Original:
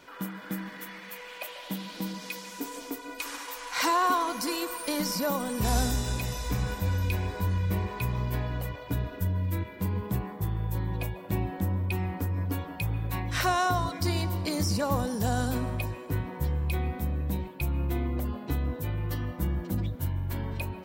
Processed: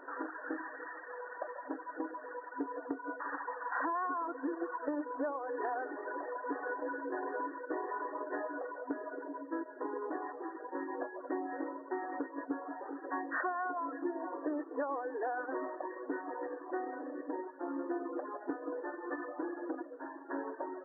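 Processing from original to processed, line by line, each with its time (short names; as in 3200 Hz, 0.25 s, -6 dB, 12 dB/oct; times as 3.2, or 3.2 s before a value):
4.92–5.49 high shelf 3200 Hz -11.5 dB
whole clip: reverb removal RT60 1.2 s; FFT band-pass 260–1900 Hz; compressor 10:1, threshold -37 dBFS; gain +4.5 dB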